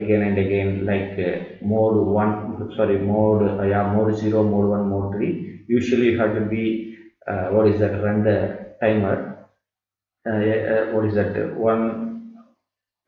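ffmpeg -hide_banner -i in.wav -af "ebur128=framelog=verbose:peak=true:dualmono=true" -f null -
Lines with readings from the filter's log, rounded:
Integrated loudness:
  I:         -18.0 LUFS
  Threshold: -28.5 LUFS
Loudness range:
  LRA:         3.1 LU
  Threshold: -38.4 LUFS
  LRA low:   -20.3 LUFS
  LRA high:  -17.2 LUFS
True peak:
  Peak:       -5.2 dBFS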